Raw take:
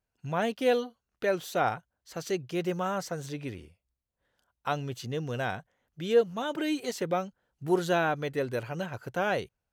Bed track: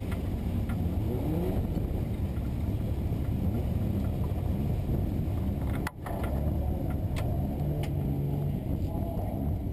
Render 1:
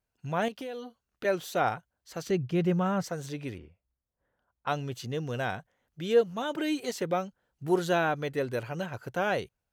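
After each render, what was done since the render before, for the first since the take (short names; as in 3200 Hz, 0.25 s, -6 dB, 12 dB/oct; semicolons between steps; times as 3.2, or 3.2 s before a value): 0.48–1.25 compressor 8:1, threshold -35 dBFS; 2.27–3.04 tone controls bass +11 dB, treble -8 dB; 3.58–4.91 low-pass opened by the level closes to 1500 Hz, open at -30.5 dBFS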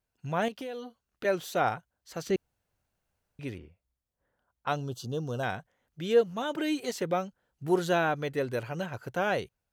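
2.36–3.39 room tone; 4.76–5.43 Butterworth band-stop 2100 Hz, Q 1.1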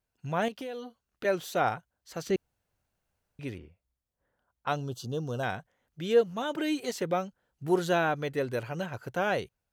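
nothing audible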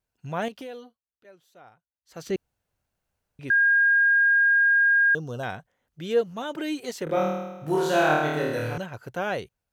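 0.73–2.26 dip -24 dB, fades 0.25 s; 3.5–5.15 bleep 1620 Hz -16 dBFS; 7.04–8.78 flutter echo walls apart 4.5 m, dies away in 1.1 s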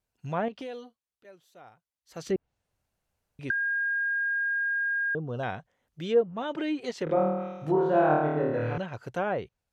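treble ducked by the level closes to 1100 Hz, closed at -22.5 dBFS; bell 1500 Hz -2.5 dB 0.26 oct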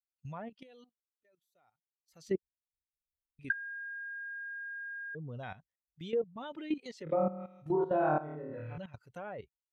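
per-bin expansion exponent 1.5; level quantiser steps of 14 dB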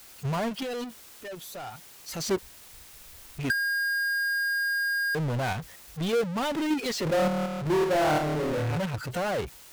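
power-law curve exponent 0.35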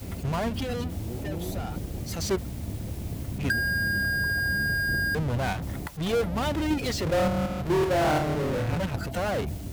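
add bed track -3.5 dB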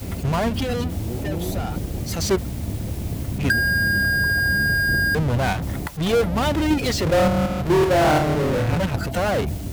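gain +6.5 dB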